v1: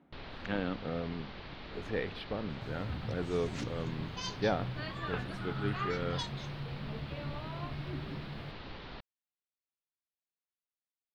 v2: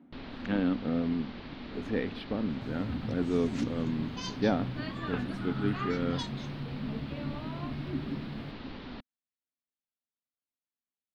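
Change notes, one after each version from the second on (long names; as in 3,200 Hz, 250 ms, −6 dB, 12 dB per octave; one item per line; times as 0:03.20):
master: add parametric band 250 Hz +13.5 dB 0.61 octaves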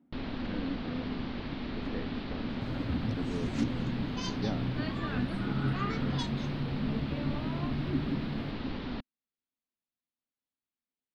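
speech −11.5 dB
first sound +3.5 dB
master: add low-shelf EQ 360 Hz +4 dB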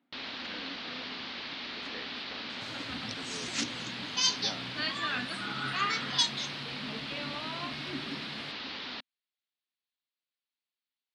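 second sound +4.0 dB
master: add meter weighting curve ITU-R 468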